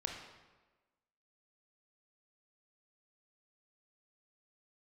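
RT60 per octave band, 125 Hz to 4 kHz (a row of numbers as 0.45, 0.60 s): 1.1, 1.3, 1.3, 1.2, 1.1, 0.90 s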